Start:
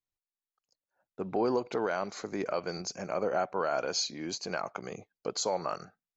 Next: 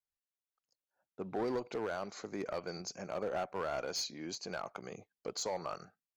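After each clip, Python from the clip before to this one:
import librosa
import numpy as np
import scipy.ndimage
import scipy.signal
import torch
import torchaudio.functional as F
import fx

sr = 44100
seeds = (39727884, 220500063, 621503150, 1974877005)

y = fx.clip_asym(x, sr, top_db=-26.5, bottom_db=-22.5)
y = y * librosa.db_to_amplitude(-5.5)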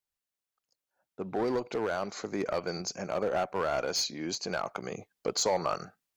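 y = fx.rider(x, sr, range_db=4, speed_s=2.0)
y = y * librosa.db_to_amplitude(7.0)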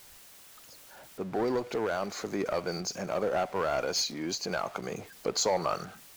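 y = x + 0.5 * 10.0 ** (-44.0 / 20.0) * np.sign(x)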